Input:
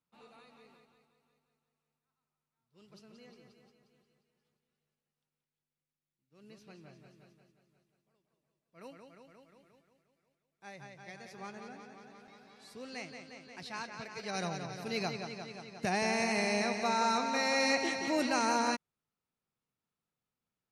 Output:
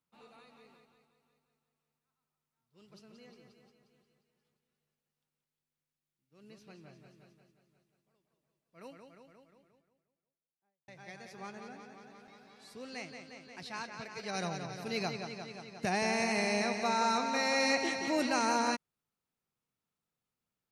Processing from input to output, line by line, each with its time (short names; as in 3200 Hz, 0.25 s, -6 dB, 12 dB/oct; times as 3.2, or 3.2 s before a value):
8.92–10.88 studio fade out